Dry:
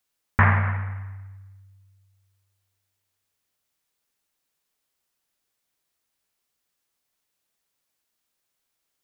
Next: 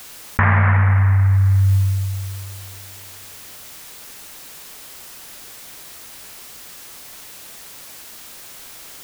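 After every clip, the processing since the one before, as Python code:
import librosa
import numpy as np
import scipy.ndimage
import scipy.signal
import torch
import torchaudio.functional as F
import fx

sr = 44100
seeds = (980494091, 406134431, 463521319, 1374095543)

y = fx.env_flatten(x, sr, amount_pct=100)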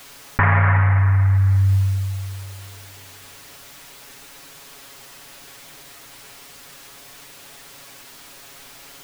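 y = fx.high_shelf(x, sr, hz=5900.0, db=-7.5)
y = y + 0.69 * np.pad(y, (int(7.2 * sr / 1000.0), 0))[:len(y)]
y = y * 10.0 ** (-1.5 / 20.0)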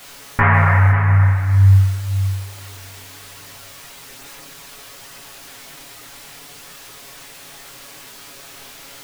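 y = fx.chorus_voices(x, sr, voices=2, hz=0.58, base_ms=22, depth_ms=4.9, mix_pct=50)
y = y + 10.0 ** (-11.0 / 20.0) * np.pad(y, (int(534 * sr / 1000.0), 0))[:len(y)]
y = y * 10.0 ** (6.5 / 20.0)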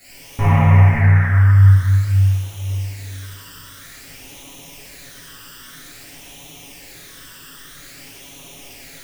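y = fx.phaser_stages(x, sr, stages=12, low_hz=700.0, high_hz=1600.0, hz=0.51, feedback_pct=25)
y = fx.rev_plate(y, sr, seeds[0], rt60_s=2.1, hf_ratio=0.75, predelay_ms=0, drr_db=-9.5)
y = y * 10.0 ** (-7.0 / 20.0)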